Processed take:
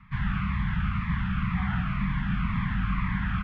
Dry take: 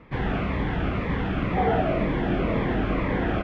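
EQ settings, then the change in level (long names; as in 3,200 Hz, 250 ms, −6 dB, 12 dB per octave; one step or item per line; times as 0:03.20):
Chebyshev band-stop filter 190–1,100 Hz, order 3
high-shelf EQ 3,400 Hz −10 dB
+1.0 dB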